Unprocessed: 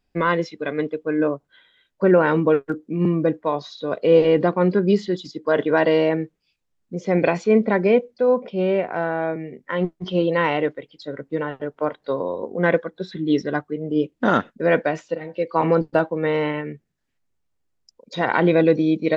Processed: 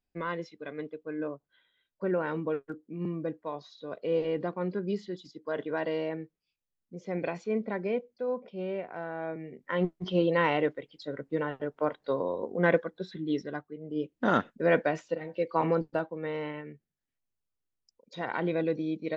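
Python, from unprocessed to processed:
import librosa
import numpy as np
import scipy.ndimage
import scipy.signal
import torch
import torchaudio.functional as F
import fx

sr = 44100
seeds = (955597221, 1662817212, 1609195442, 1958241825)

y = fx.gain(x, sr, db=fx.line((9.05, -14.0), (9.76, -5.5), (12.82, -5.5), (13.75, -15.0), (14.39, -6.0), (15.48, -6.0), (16.09, -13.0)))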